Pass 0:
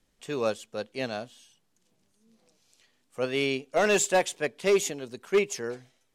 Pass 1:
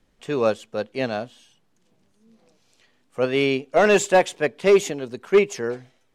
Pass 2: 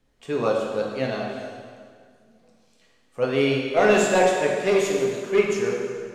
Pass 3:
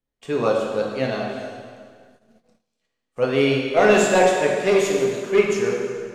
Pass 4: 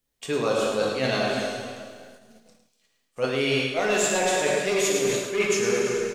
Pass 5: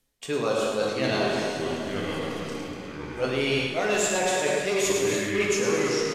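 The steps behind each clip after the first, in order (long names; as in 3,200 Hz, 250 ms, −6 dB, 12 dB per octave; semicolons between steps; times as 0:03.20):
high-shelf EQ 4,100 Hz −11 dB; level +7.5 dB
dense smooth reverb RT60 2 s, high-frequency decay 0.85×, DRR −2 dB; level −4.5 dB
noise gate −55 dBFS, range −20 dB; level +2.5 dB
high-shelf EQ 2,700 Hz +11.5 dB; reversed playback; downward compressor 10 to 1, threshold −23 dBFS, peak gain reduction 14.5 dB; reversed playback; single-tap delay 107 ms −8 dB; level +2.5 dB
reversed playback; upward compression, threshold −26 dBFS; reversed playback; delay with pitch and tempo change per echo 581 ms, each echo −5 semitones, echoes 2, each echo −6 dB; downsampling to 32,000 Hz; level −1.5 dB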